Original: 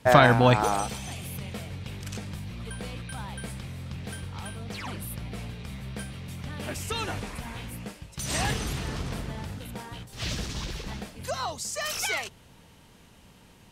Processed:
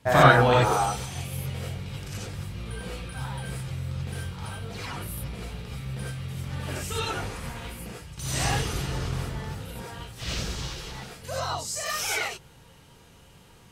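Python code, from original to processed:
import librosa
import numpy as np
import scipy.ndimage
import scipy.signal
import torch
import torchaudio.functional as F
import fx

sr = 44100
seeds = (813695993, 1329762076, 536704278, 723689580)

y = fx.low_shelf(x, sr, hz=500.0, db=-6.0, at=(10.58, 11.29))
y = fx.rev_gated(y, sr, seeds[0], gate_ms=110, shape='rising', drr_db=-6.0)
y = y * librosa.db_to_amplitude(-5.5)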